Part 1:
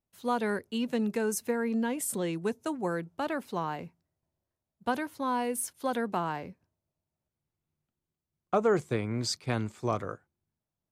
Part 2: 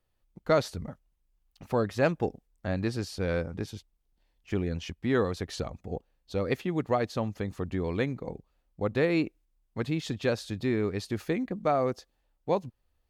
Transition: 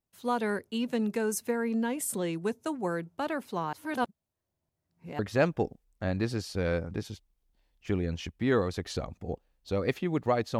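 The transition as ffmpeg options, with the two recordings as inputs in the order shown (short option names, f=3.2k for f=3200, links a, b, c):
-filter_complex "[0:a]apad=whole_dur=10.59,atrim=end=10.59,asplit=2[a][b];[a]atrim=end=3.732[c];[b]atrim=start=3.728:end=5.192,asetpts=PTS-STARTPTS,areverse[d];[1:a]atrim=start=1.818:end=7.22[e];[c][d]acrossfade=d=0.004:c1=hsin:c2=hsin[f];[f][e]acrossfade=d=0.004:c1=hsin:c2=hsin"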